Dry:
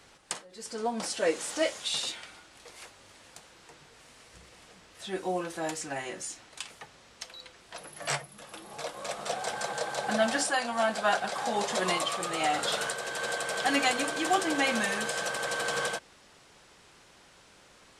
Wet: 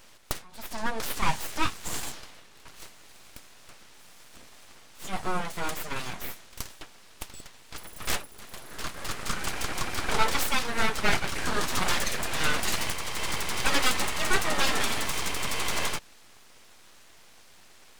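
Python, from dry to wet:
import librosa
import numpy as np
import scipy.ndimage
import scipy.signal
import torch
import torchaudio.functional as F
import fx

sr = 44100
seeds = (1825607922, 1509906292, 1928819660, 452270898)

y = fx.high_shelf(x, sr, hz=3600.0, db=-6.5, at=(1.47, 2.8))
y = np.abs(y)
y = y * librosa.db_to_amplitude(5.0)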